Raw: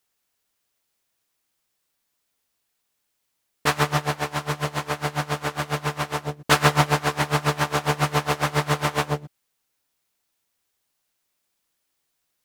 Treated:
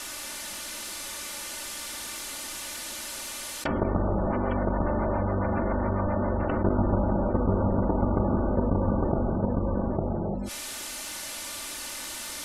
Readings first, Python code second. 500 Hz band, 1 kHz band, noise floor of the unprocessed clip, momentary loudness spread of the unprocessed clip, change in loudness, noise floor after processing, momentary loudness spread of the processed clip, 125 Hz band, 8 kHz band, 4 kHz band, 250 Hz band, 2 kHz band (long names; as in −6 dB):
+0.5 dB, −6.5 dB, −76 dBFS, 8 LU, −4.5 dB, −37 dBFS, 9 LU, −1.0 dB, +1.0 dB, −6.5 dB, +5.0 dB, −11.0 dB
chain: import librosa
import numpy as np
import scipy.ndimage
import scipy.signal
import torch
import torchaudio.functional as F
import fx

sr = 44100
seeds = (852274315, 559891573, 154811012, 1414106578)

p1 = fx.cycle_switch(x, sr, every=3, mode='inverted')
p2 = fx.power_curve(p1, sr, exponent=0.7)
p3 = scipy.signal.sosfilt(scipy.signal.butter(4, 12000.0, 'lowpass', fs=sr, output='sos'), p2)
p4 = fx.env_lowpass_down(p3, sr, base_hz=480.0, full_db=-17.0)
p5 = p4 + 0.71 * np.pad(p4, (int(3.4 * sr / 1000.0), 0))[:len(p4)]
p6 = fx.level_steps(p5, sr, step_db=18)
p7 = p6 + fx.echo_single(p6, sr, ms=855, db=-5.5, dry=0)
p8 = fx.rev_gated(p7, sr, seeds[0], gate_ms=370, shape='flat', drr_db=2.5)
p9 = fx.spec_gate(p8, sr, threshold_db=-30, keep='strong')
p10 = fx.env_flatten(p9, sr, amount_pct=70)
y = p10 * 10.0 ** (-4.5 / 20.0)